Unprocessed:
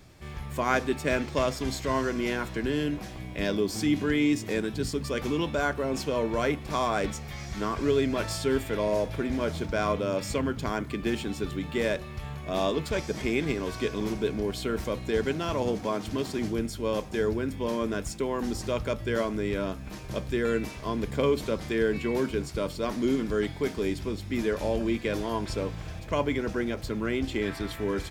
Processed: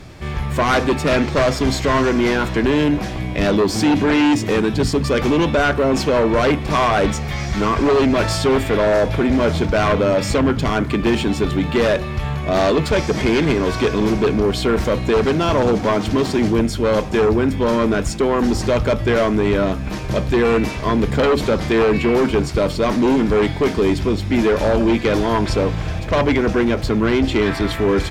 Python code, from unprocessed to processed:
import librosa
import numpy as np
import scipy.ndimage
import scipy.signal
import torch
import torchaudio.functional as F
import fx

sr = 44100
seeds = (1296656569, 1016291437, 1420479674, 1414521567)

p1 = fx.fold_sine(x, sr, drive_db=14, ceiling_db=-9.5)
p2 = x + (p1 * 10.0 ** (-7.0 / 20.0))
p3 = fx.high_shelf(p2, sr, hz=7600.0, db=-11.5)
y = p3 * 10.0 ** (2.0 / 20.0)